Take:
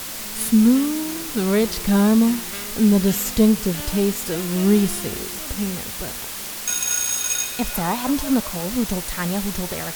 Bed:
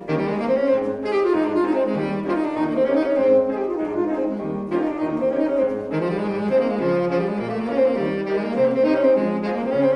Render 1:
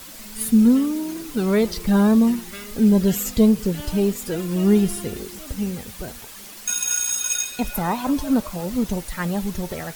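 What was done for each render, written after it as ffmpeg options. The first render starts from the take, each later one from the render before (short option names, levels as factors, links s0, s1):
-af "afftdn=nr=10:nf=-31"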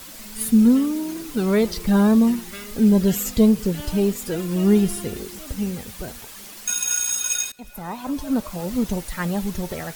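-filter_complex "[0:a]asplit=2[s0][s1];[s0]atrim=end=7.52,asetpts=PTS-STARTPTS,afade=t=out:st=7.516:d=0.004:c=hsin:silence=0.0891251[s2];[s1]atrim=start=7.52,asetpts=PTS-STARTPTS,afade=t=in:d=1.18:silence=0.0891251[s3];[s2][s3]concat=n=2:v=0:a=1"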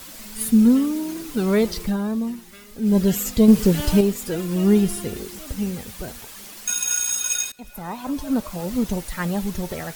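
-filter_complex "[0:a]asettb=1/sr,asplit=3[s0][s1][s2];[s0]atrim=end=3.484[s3];[s1]atrim=start=3.48:end=4.01,asetpts=PTS-STARTPTS,afade=t=in:d=0.004:c=qsin,afade=t=out:st=0.526:d=0.004:c=qsin,acontrast=60[s4];[s2]atrim=start=4.006[s5];[s3][s4]acrossfade=d=0.004:c1=hsin:c2=qsin[s6];[s6][s5]acrossfade=d=0.004:c1=qsin:c2=hsin,asplit=3[s7][s8][s9];[s7]atrim=end=1.97,asetpts=PTS-STARTPTS,afade=t=out:st=1.82:d=0.15:silence=0.354813[s10];[s8]atrim=start=1.97:end=2.82,asetpts=PTS-STARTPTS,volume=0.355[s11];[s9]atrim=start=2.82,asetpts=PTS-STARTPTS,afade=t=in:d=0.15:silence=0.354813[s12];[s10][s11][s12]concat=n=3:v=0:a=1"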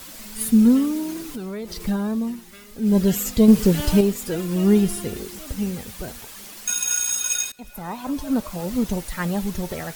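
-filter_complex "[0:a]asettb=1/sr,asplit=3[s0][s1][s2];[s0]atrim=end=1.244[s3];[s1]atrim=start=1.24:end=1.84,asetpts=PTS-STARTPTS,afade=t=in:d=0.004:c=qsin,afade=t=out:st=0.596:d=0.004:c=qsin,acompressor=threshold=0.0355:ratio=5:attack=3.2:release=140:knee=1:detection=peak[s4];[s2]atrim=start=1.836[s5];[s3][s4]acrossfade=d=0.004:c1=hsin:c2=qsin[s6];[s6][s5]acrossfade=d=0.004:c1=qsin:c2=hsin"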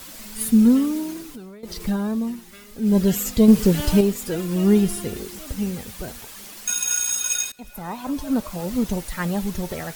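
-filter_complex "[0:a]asplit=2[s0][s1];[s0]atrim=end=1.63,asetpts=PTS-STARTPTS,afade=t=out:st=0.98:d=0.65:silence=0.188365[s2];[s1]atrim=start=1.63,asetpts=PTS-STARTPTS,afade=t=in:d=0.004:c=hsin:silence=0.188365[s3];[s2][s3]concat=n=2:v=0:a=1"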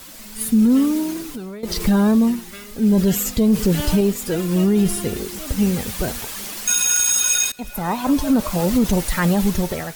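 -af "dynaudnorm=f=280:g=5:m=3.55,alimiter=limit=0.355:level=0:latency=1:release=19"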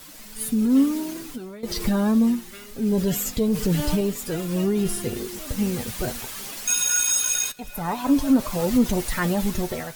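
-af "flanger=delay=6.6:depth=1.8:regen=46:speed=0.27:shape=sinusoidal"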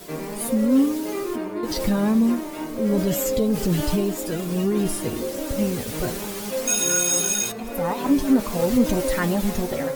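-filter_complex "[1:a]volume=0.335[s0];[0:a][s0]amix=inputs=2:normalize=0"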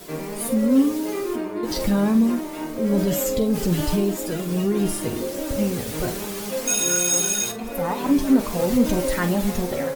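-filter_complex "[0:a]asplit=2[s0][s1];[s1]adelay=45,volume=0.282[s2];[s0][s2]amix=inputs=2:normalize=0"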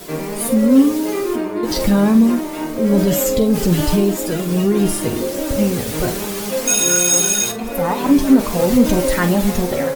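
-af "volume=2,alimiter=limit=0.794:level=0:latency=1"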